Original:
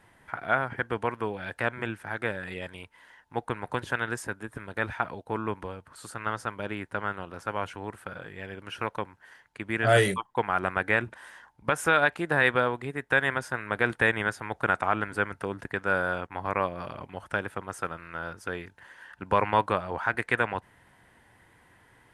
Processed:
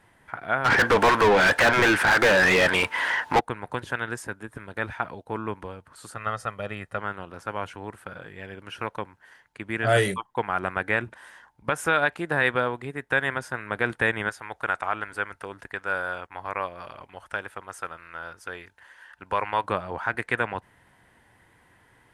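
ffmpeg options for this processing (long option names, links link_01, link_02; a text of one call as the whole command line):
ffmpeg -i in.wav -filter_complex "[0:a]asplit=3[link_01][link_02][link_03];[link_01]afade=type=out:start_time=0.64:duration=0.02[link_04];[link_02]asplit=2[link_05][link_06];[link_06]highpass=frequency=720:poles=1,volume=39dB,asoftclip=type=tanh:threshold=-9.5dB[link_07];[link_05][link_07]amix=inputs=2:normalize=0,lowpass=frequency=2700:poles=1,volume=-6dB,afade=type=in:start_time=0.64:duration=0.02,afade=type=out:start_time=3.39:duration=0.02[link_08];[link_03]afade=type=in:start_time=3.39:duration=0.02[link_09];[link_04][link_08][link_09]amix=inputs=3:normalize=0,asettb=1/sr,asplit=3[link_10][link_11][link_12];[link_10]atrim=end=6.164[link_13];[link_11]atrim=start=6.16:end=6.98,asetpts=PTS-STARTPTS,afade=type=in:duration=0.004:curve=qsin,afade=type=out:start_time=0.816:duration=0.004:curve=qsin,aecho=1:1:1.6:0.58,atrim=end_sample=36162[link_14];[link_12]atrim=start=6.976[link_15];[link_13][link_14]acrossfade=duration=0.004:curve1=hsin:curve2=qsin[link_16];[link_16][link_15]acrossfade=duration=0.004:curve1=qsin:curve2=hsin,asettb=1/sr,asplit=3[link_17][link_18][link_19];[link_17]atrim=end=14.294[link_20];[link_18]atrim=start=14.29:end=19.64,asetpts=PTS-STARTPTS,afade=type=in:duration=0.004:curve=qsin,afade=type=out:start_time=5.346:duration=0.004:curve=qsin,equalizer=frequency=170:width_type=o:width=2.7:gain=-10.5[link_21];[link_19]atrim=start=19.636[link_22];[link_20][link_21]acrossfade=duration=0.004:curve1=hsin:curve2=qsin[link_23];[link_23][link_22]acrossfade=duration=0.004:curve1=qsin:curve2=hsin" out.wav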